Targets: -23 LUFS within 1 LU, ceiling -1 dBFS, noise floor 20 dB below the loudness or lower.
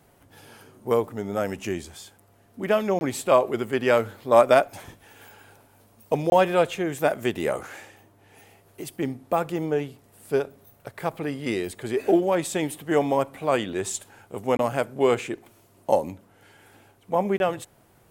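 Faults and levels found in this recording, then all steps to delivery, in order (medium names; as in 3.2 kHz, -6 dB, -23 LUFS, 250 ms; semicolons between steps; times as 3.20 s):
dropouts 4; longest dropout 21 ms; loudness -24.5 LUFS; peak level -3.5 dBFS; loudness target -23.0 LUFS
-> interpolate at 2.99/6.30/14.57/17.38 s, 21 ms; trim +1.5 dB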